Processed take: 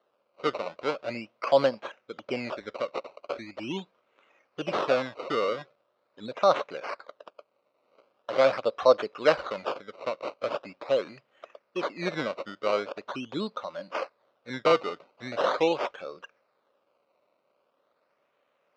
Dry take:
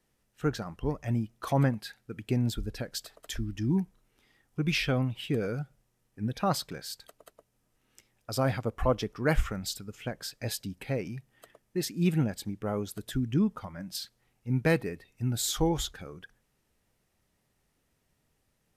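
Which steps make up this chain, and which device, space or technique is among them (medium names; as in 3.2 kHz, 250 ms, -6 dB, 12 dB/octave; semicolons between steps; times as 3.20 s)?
circuit-bent sampling toy (decimation with a swept rate 18×, swing 100% 0.42 Hz; cabinet simulation 530–4200 Hz, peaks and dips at 560 Hz +10 dB, 810 Hz -4 dB, 1.2 kHz +3 dB, 1.8 kHz -7 dB, 3.3 kHz -5 dB); trim +6.5 dB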